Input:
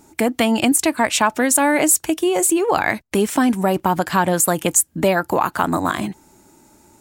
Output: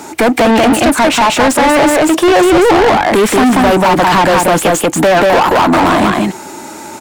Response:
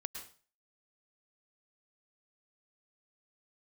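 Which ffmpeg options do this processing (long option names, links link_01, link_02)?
-filter_complex "[0:a]asettb=1/sr,asplit=3[link_01][link_02][link_03];[link_01]atrim=end=2.144[link_04];[link_02]atrim=start=2.14:end=2.71,asetpts=PTS-STARTPTS,afade=type=in:duration=0.004:curve=qsin,afade=type=out:start_time=0.566:duration=0.004:curve=qsin,equalizer=frequency=920:width_type=o:width=2.8:gain=8[link_05];[link_03]atrim=start=2.706[link_06];[link_04][link_05]acrossfade=duration=0.004:curve1=hsin:curve2=qsin[link_07];[link_07][link_06]acrossfade=duration=0.004:curve1=qsin:curve2=hsin,acrossover=split=370|970[link_08][link_09][link_10];[link_10]acompressor=threshold=-32dB:ratio=4[link_11];[link_08][link_09][link_11]amix=inputs=3:normalize=0,aecho=1:1:186:0.631,asplit=2[link_12][link_13];[link_13]highpass=frequency=720:poles=1,volume=34dB,asoftclip=type=tanh:threshold=-1.5dB[link_14];[link_12][link_14]amix=inputs=2:normalize=0,lowpass=frequency=3200:poles=1,volume=-6dB"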